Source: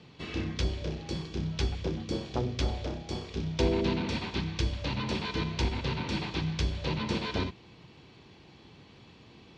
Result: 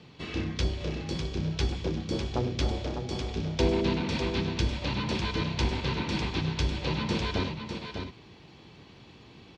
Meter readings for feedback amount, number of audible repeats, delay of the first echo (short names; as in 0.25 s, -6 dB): no steady repeat, 1, 0.601 s